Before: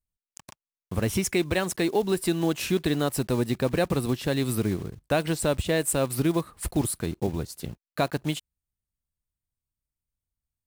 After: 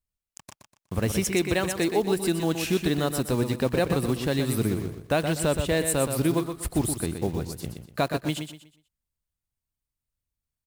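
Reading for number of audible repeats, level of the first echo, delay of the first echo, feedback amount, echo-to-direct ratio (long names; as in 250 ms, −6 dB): 3, −7.5 dB, 122 ms, 30%, −7.0 dB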